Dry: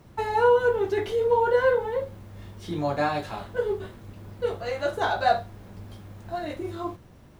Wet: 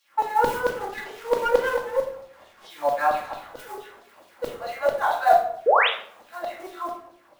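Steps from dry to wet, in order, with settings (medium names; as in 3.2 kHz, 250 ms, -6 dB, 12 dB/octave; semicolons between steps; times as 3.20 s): modulation noise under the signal 17 dB; dynamic bell 3.5 kHz, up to -4 dB, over -43 dBFS, Q 0.85; LFO high-pass saw down 4.5 Hz 580–4300 Hz; 5.66–5.89 s: painted sound rise 400–4000 Hz -18 dBFS; treble shelf 2.1 kHz -10 dB; simulated room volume 980 m³, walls furnished, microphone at 2.3 m; 0.69–2.65 s: sliding maximum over 5 samples; trim +1 dB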